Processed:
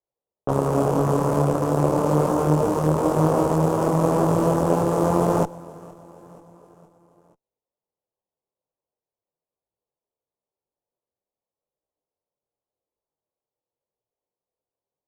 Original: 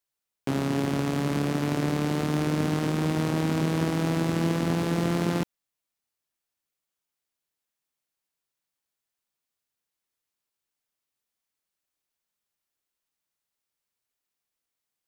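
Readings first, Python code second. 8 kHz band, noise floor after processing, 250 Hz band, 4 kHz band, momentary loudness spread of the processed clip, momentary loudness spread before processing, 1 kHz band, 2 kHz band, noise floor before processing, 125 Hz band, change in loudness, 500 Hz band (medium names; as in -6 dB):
+3.5 dB, under -85 dBFS, +3.0 dB, -6.5 dB, 4 LU, 2 LU, +10.0 dB, -3.5 dB, under -85 dBFS, +4.5 dB, +6.0 dB, +10.5 dB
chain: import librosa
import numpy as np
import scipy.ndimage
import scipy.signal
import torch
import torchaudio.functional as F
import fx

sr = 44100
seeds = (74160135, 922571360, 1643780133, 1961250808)

p1 = fx.cheby_harmonics(x, sr, harmonics=(6, 8), levels_db=(-12, -10), full_scale_db=-12.5)
p2 = fx.graphic_eq_10(p1, sr, hz=(125, 250, 500, 1000, 2000, 4000, 8000), db=(3, -3, 11, 8, -12, -11, 4))
p3 = fx.env_lowpass(p2, sr, base_hz=670.0, full_db=-20.0)
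p4 = p3 + fx.echo_feedback(p3, sr, ms=473, feedback_pct=54, wet_db=-21, dry=0)
p5 = fx.detune_double(p4, sr, cents=32)
y = F.gain(torch.from_numpy(p5), 4.0).numpy()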